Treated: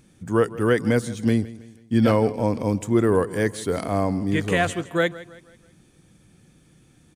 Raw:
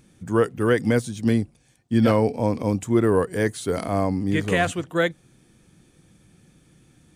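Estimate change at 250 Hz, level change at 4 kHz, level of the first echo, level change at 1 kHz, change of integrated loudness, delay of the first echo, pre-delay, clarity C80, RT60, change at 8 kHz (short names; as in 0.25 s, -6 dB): 0.0 dB, 0.0 dB, -18.0 dB, 0.0 dB, 0.0 dB, 0.162 s, none, none, none, 0.0 dB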